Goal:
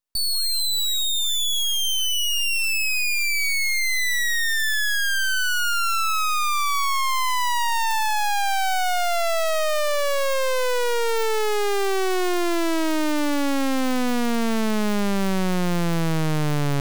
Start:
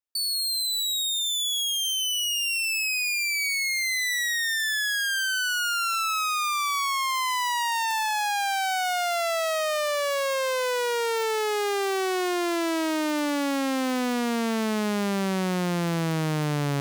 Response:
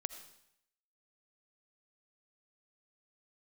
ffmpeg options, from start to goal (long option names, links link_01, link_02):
-af "aeval=exprs='max(val(0),0)':channel_layout=same,volume=8dB"